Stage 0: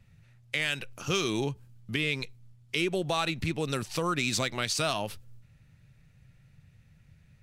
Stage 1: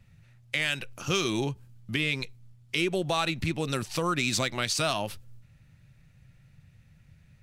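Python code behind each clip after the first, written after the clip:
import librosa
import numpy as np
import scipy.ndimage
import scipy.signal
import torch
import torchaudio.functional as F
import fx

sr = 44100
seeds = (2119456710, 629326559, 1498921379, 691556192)

y = fx.notch(x, sr, hz=440.0, q=12.0)
y = F.gain(torch.from_numpy(y), 1.5).numpy()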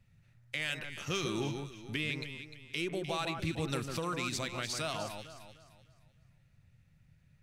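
y = fx.rider(x, sr, range_db=3, speed_s=0.5)
y = fx.echo_alternate(y, sr, ms=151, hz=1700.0, feedback_pct=57, wet_db=-5.0)
y = F.gain(torch.from_numpy(y), -7.5).numpy()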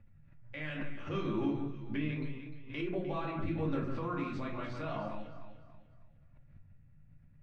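y = scipy.signal.sosfilt(scipy.signal.butter(2, 1500.0, 'lowpass', fs=sr, output='sos'), x)
y = fx.room_shoebox(y, sr, seeds[0], volume_m3=200.0, walls='furnished', distance_m=2.4)
y = fx.pre_swell(y, sr, db_per_s=80.0)
y = F.gain(torch.from_numpy(y), -5.0).numpy()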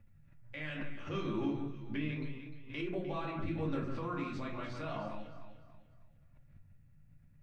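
y = fx.high_shelf(x, sr, hz=4300.0, db=7.0)
y = F.gain(torch.from_numpy(y), -2.0).numpy()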